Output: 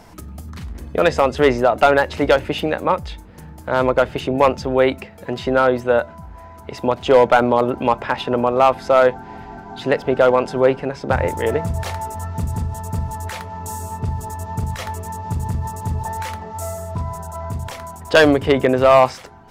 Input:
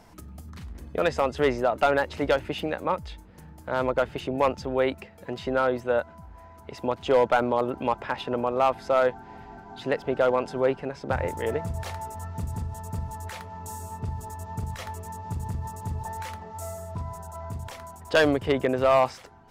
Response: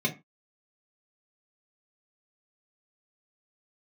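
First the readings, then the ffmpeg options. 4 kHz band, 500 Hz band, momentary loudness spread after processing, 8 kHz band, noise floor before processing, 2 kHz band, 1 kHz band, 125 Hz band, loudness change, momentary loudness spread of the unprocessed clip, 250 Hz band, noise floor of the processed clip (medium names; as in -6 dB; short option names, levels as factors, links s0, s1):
+8.5 dB, +8.5 dB, 17 LU, +8.5 dB, -49 dBFS, +8.5 dB, +8.5 dB, +8.5 dB, +8.5 dB, 17 LU, +9.0 dB, -40 dBFS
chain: -filter_complex "[0:a]asplit=2[s0][s1];[1:a]atrim=start_sample=2205,adelay=22[s2];[s1][s2]afir=irnorm=-1:irlink=0,volume=0.0316[s3];[s0][s3]amix=inputs=2:normalize=0,volume=2.66"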